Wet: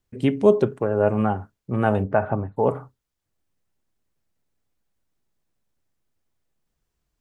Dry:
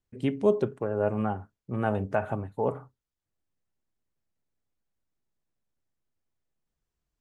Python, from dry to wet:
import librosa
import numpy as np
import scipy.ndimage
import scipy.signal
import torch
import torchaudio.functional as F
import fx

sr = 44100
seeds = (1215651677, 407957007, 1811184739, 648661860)

y = fx.lowpass(x, sr, hz=fx.line((2.03, 2000.0), (2.56, 1400.0)), slope=12, at=(2.03, 2.56), fade=0.02)
y = y * librosa.db_to_amplitude(7.0)